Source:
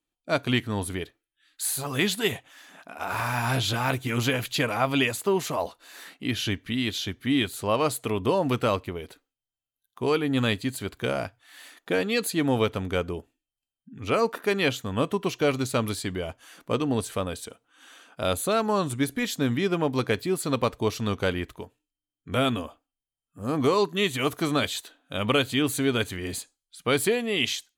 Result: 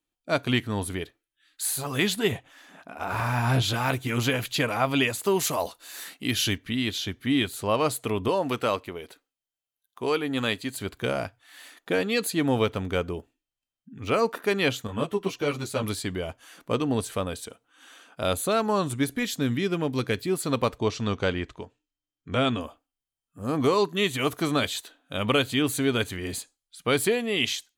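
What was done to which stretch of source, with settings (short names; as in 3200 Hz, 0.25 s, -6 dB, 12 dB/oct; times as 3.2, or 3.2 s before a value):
2.16–3.62 tilt -1.5 dB/oct
5.23–6.58 high shelf 4400 Hz +11 dB
8.28–10.77 low shelf 180 Hz -11.5 dB
12.5–14.18 median filter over 3 samples
14.87–15.83 ensemble effect
19.22–20.28 dynamic EQ 820 Hz, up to -6 dB, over -39 dBFS, Q 0.94
20.78–22.61 LPF 7500 Hz 24 dB/oct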